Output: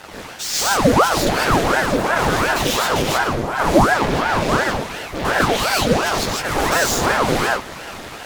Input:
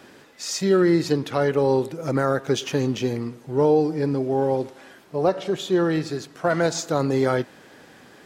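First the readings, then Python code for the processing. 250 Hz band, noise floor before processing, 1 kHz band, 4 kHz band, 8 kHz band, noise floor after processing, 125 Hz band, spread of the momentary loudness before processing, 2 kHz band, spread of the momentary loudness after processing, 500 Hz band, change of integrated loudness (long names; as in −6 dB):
+1.5 dB, −50 dBFS, +11.5 dB, +11.5 dB, +11.5 dB, −34 dBFS, +3.0 dB, 8 LU, +14.0 dB, 9 LU, +1.0 dB, +5.0 dB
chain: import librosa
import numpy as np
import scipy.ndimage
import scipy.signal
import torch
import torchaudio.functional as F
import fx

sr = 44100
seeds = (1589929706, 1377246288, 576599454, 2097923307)

p1 = fx.leveller(x, sr, passes=3)
p2 = fx.fold_sine(p1, sr, drive_db=14, ceiling_db=-9.5)
p3 = p1 + (p2 * librosa.db_to_amplitude(-10.0))
p4 = fx.rev_gated(p3, sr, seeds[0], gate_ms=180, shape='rising', drr_db=-6.0)
p5 = fx.ring_lfo(p4, sr, carrier_hz=650.0, swing_pct=85, hz=2.8)
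y = p5 * librosa.db_to_amplitude(-5.5)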